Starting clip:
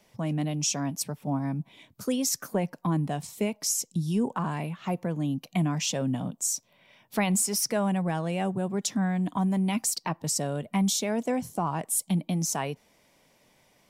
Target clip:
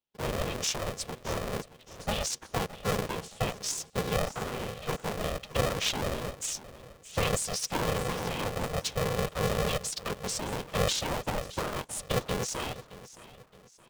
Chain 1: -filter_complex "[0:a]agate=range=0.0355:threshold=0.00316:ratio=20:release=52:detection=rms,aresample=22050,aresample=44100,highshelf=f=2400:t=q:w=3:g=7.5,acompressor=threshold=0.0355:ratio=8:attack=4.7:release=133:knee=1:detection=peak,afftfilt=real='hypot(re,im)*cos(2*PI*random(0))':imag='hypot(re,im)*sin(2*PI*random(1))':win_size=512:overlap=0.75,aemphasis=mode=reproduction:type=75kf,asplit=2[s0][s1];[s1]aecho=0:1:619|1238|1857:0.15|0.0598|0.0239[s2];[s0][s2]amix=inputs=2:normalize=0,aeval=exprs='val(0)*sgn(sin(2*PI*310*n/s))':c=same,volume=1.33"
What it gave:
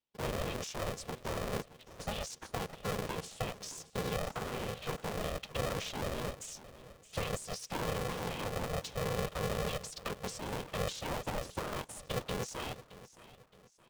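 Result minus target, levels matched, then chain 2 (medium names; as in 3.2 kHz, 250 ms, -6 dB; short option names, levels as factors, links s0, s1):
compression: peak gain reduction +15 dB
-filter_complex "[0:a]agate=range=0.0355:threshold=0.00316:ratio=20:release=52:detection=rms,aresample=22050,aresample=44100,highshelf=f=2400:t=q:w=3:g=7.5,afftfilt=real='hypot(re,im)*cos(2*PI*random(0))':imag='hypot(re,im)*sin(2*PI*random(1))':win_size=512:overlap=0.75,aemphasis=mode=reproduction:type=75kf,asplit=2[s0][s1];[s1]aecho=0:1:619|1238|1857:0.15|0.0598|0.0239[s2];[s0][s2]amix=inputs=2:normalize=0,aeval=exprs='val(0)*sgn(sin(2*PI*310*n/s))':c=same,volume=1.33"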